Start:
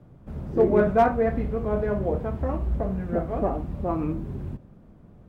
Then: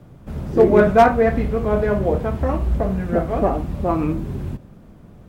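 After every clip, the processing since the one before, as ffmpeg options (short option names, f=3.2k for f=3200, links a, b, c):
-af "highshelf=f=2.1k:g=9,volume=6dB"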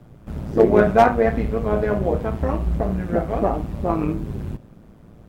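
-af "tremolo=f=110:d=0.621,volume=1dB"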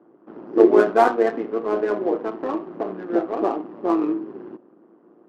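-af "highpass=f=290:w=0.5412,highpass=f=290:w=1.3066,equalizer=f=340:t=q:w=4:g=9,equalizer=f=590:t=q:w=4:g=-4,equalizer=f=1.1k:t=q:w=4:g=3,equalizer=f=2.3k:t=q:w=4:g=-7,equalizer=f=3.7k:t=q:w=4:g=-9,lowpass=f=5.3k:w=0.5412,lowpass=f=5.3k:w=1.3066,adynamicsmooth=sensitivity=3.5:basefreq=1.5k,volume=-1dB"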